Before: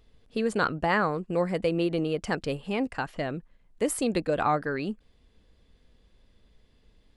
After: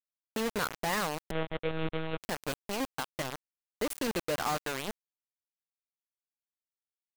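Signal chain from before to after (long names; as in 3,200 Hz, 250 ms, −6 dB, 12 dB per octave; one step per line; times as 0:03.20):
in parallel at +2 dB: downward compressor 8 to 1, threshold −38 dBFS, peak gain reduction 17.5 dB
on the sum: bit reduction 4 bits
0:01.31–0:02.21: one-pitch LPC vocoder at 8 kHz 160 Hz
level −9 dB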